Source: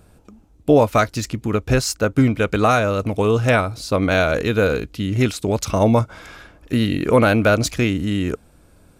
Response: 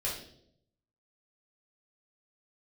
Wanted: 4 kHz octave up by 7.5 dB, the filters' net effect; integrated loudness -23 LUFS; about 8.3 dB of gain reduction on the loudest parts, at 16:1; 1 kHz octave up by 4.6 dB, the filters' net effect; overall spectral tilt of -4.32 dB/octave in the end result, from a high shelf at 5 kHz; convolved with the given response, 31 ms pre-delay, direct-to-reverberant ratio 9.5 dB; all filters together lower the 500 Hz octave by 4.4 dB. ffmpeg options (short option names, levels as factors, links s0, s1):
-filter_complex "[0:a]equalizer=f=500:t=o:g=-8,equalizer=f=1000:t=o:g=8,equalizer=f=4000:t=o:g=5.5,highshelf=f=5000:g=7.5,acompressor=threshold=0.141:ratio=16,asplit=2[s0][s1];[1:a]atrim=start_sample=2205,adelay=31[s2];[s1][s2]afir=irnorm=-1:irlink=0,volume=0.2[s3];[s0][s3]amix=inputs=2:normalize=0,volume=0.891"